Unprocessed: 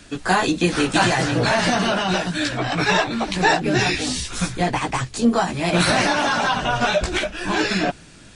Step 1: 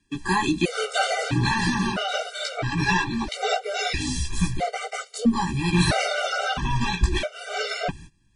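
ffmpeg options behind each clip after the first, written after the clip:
ffmpeg -i in.wav -af "agate=range=-21dB:threshold=-39dB:ratio=16:detection=peak,asubboost=boost=2.5:cutoff=160,afftfilt=real='re*gt(sin(2*PI*0.76*pts/sr)*(1-2*mod(floor(b*sr/1024/390),2)),0)':imag='im*gt(sin(2*PI*0.76*pts/sr)*(1-2*mod(floor(b*sr/1024/390),2)),0)':win_size=1024:overlap=0.75,volume=-1.5dB" out.wav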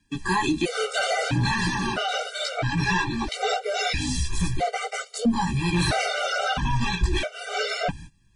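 ffmpeg -i in.wav -filter_complex "[0:a]asplit=2[link_01][link_02];[link_02]alimiter=limit=-19dB:level=0:latency=1:release=29,volume=-1dB[link_03];[link_01][link_03]amix=inputs=2:normalize=0,asoftclip=type=tanh:threshold=-7.5dB,flanger=delay=1.3:depth=1.3:regen=-54:speed=0.75:shape=sinusoidal" out.wav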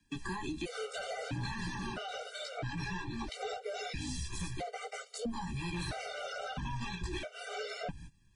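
ffmpeg -i in.wav -filter_complex "[0:a]acrossover=split=83|400[link_01][link_02][link_03];[link_01]acompressor=threshold=-38dB:ratio=4[link_04];[link_02]acompressor=threshold=-36dB:ratio=4[link_05];[link_03]acompressor=threshold=-37dB:ratio=4[link_06];[link_04][link_05][link_06]amix=inputs=3:normalize=0,volume=-5dB" out.wav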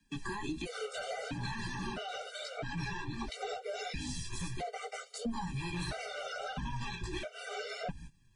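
ffmpeg -i in.wav -af "flanger=delay=4.4:depth=3.8:regen=-37:speed=1.5:shape=sinusoidal,volume=4dB" out.wav

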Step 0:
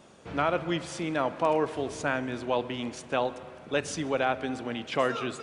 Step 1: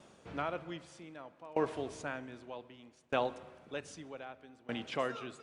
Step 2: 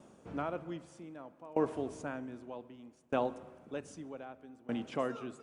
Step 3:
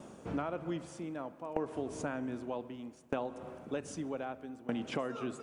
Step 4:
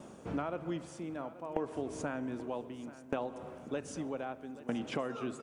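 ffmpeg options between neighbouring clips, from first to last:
ffmpeg -i in.wav -af "aeval=exprs='val(0)*pow(10,-23*if(lt(mod(0.64*n/s,1),2*abs(0.64)/1000),1-mod(0.64*n/s,1)/(2*abs(0.64)/1000),(mod(0.64*n/s,1)-2*abs(0.64)/1000)/(1-2*abs(0.64)/1000))/20)':channel_layout=same,volume=-3.5dB" out.wav
ffmpeg -i in.wav -af "equalizer=frequency=250:width_type=o:width=1:gain=5,equalizer=frequency=2000:width_type=o:width=1:gain=-5,equalizer=frequency=4000:width_type=o:width=1:gain=-8" out.wav
ffmpeg -i in.wav -af "acompressor=threshold=-39dB:ratio=12,volume=7.5dB" out.wav
ffmpeg -i in.wav -af "aecho=1:1:833|1666|2499:0.158|0.0618|0.0241" out.wav

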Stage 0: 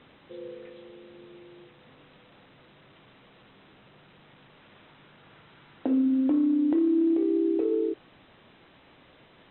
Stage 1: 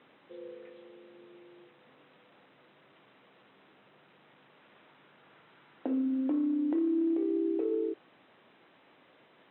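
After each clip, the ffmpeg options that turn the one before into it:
ffmpeg -i in.wav -af "highpass=150,bass=frequency=250:gain=-5,treble=frequency=4000:gain=-10,volume=-4dB" out.wav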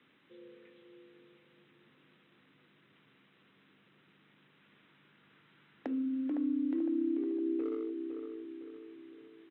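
ffmpeg -i in.wav -filter_complex "[0:a]acrossover=split=230|410|1100[link_01][link_02][link_03][link_04];[link_03]acrusher=bits=4:mix=0:aa=0.5[link_05];[link_01][link_02][link_05][link_04]amix=inputs=4:normalize=0,asplit=2[link_06][link_07];[link_07]adelay=509,lowpass=frequency=1600:poles=1,volume=-6dB,asplit=2[link_08][link_09];[link_09]adelay=509,lowpass=frequency=1600:poles=1,volume=0.49,asplit=2[link_10][link_11];[link_11]adelay=509,lowpass=frequency=1600:poles=1,volume=0.49,asplit=2[link_12][link_13];[link_13]adelay=509,lowpass=frequency=1600:poles=1,volume=0.49,asplit=2[link_14][link_15];[link_15]adelay=509,lowpass=frequency=1600:poles=1,volume=0.49,asplit=2[link_16][link_17];[link_17]adelay=509,lowpass=frequency=1600:poles=1,volume=0.49[link_18];[link_06][link_08][link_10][link_12][link_14][link_16][link_18]amix=inputs=7:normalize=0,volume=-3dB" out.wav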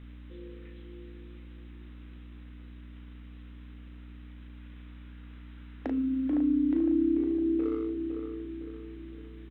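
ffmpeg -i in.wav -filter_complex "[0:a]aeval=exprs='val(0)+0.00316*(sin(2*PI*60*n/s)+sin(2*PI*2*60*n/s)/2+sin(2*PI*3*60*n/s)/3+sin(2*PI*4*60*n/s)/4+sin(2*PI*5*60*n/s)/5)':channel_layout=same,asplit=2[link_01][link_02];[link_02]adelay=37,volume=-5dB[link_03];[link_01][link_03]amix=inputs=2:normalize=0,volume=4dB" out.wav

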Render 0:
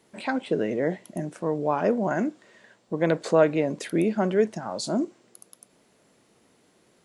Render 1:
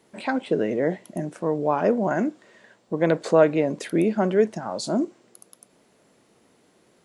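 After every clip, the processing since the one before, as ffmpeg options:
ffmpeg -i in.wav -af "equalizer=frequency=500:width=0.32:gain=2.5" out.wav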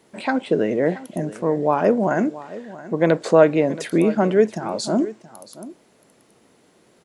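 ffmpeg -i in.wav -af "aecho=1:1:676:0.141,volume=3.5dB" out.wav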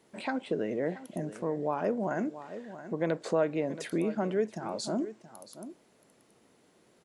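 ffmpeg -i in.wav -af "acompressor=threshold=-27dB:ratio=1.5,volume=-7.5dB" out.wav

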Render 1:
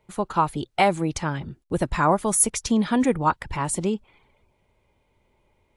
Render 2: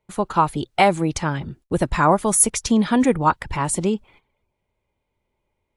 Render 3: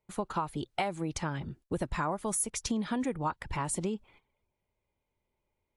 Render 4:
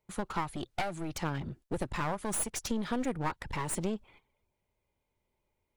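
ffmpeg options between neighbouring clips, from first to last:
ffmpeg -i in.wav -af "agate=range=-13dB:threshold=-52dB:ratio=16:detection=peak,volume=3.5dB" out.wav
ffmpeg -i in.wav -af "acompressor=threshold=-21dB:ratio=6,volume=-7.5dB" out.wav
ffmpeg -i in.wav -af "aeval=exprs='clip(val(0),-1,0.01)':channel_layout=same,volume=1.5dB" out.wav

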